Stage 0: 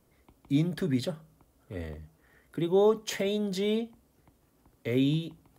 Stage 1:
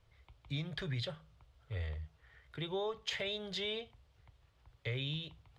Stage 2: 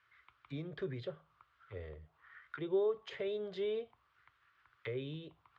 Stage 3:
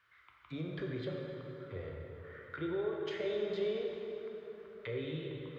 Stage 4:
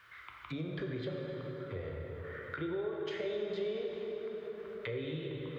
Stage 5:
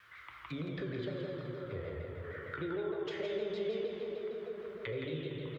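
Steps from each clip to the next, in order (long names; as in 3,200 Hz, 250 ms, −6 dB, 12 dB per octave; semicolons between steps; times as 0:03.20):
drawn EQ curve 110 Hz 0 dB, 240 Hz −26 dB, 460 Hz −12 dB, 3,500 Hz 0 dB, 13,000 Hz −27 dB; downward compressor, threshold −38 dBFS, peak gain reduction 7 dB; level +4 dB
flat-topped bell 650 Hz −9.5 dB 1.2 octaves; envelope filter 480–1,600 Hz, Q 2.7, down, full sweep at −38.5 dBFS; level +12.5 dB
brickwall limiter −32 dBFS, peak gain reduction 7.5 dB; dense smooth reverb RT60 3.9 s, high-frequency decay 0.6×, DRR −1 dB; level +1 dB
downward compressor 2 to 1, threshold −57 dBFS, peak gain reduction 14 dB; level +12 dB
single-tap delay 168 ms −6.5 dB; pitch modulation by a square or saw wave saw down 6.5 Hz, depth 100 cents; level −1 dB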